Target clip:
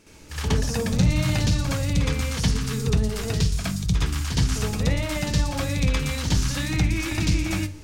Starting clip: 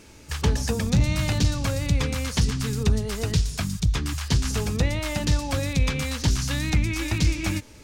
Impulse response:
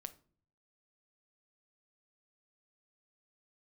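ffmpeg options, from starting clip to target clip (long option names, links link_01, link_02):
-filter_complex "[0:a]asplit=2[link_01][link_02];[1:a]atrim=start_sample=2205,adelay=66[link_03];[link_02][link_03]afir=irnorm=-1:irlink=0,volume=12dB[link_04];[link_01][link_04]amix=inputs=2:normalize=0,volume=-7.5dB"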